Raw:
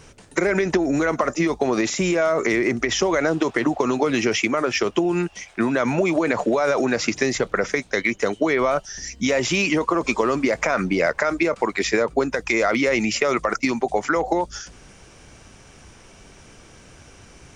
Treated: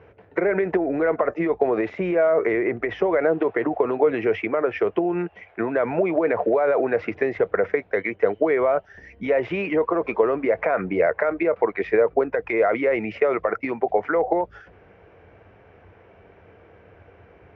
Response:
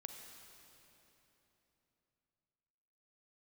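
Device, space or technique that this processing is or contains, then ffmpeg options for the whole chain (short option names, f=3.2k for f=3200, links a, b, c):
bass cabinet: -af "highpass=80,equalizer=f=92:t=q:w=4:g=7,equalizer=f=140:t=q:w=4:g=-7,equalizer=f=240:t=q:w=4:g=-7,equalizer=f=460:t=q:w=4:g=8,equalizer=f=680:t=q:w=4:g=5,equalizer=f=1.2k:t=q:w=4:g=-3,lowpass=f=2.2k:w=0.5412,lowpass=f=2.2k:w=1.3066,volume=-3dB"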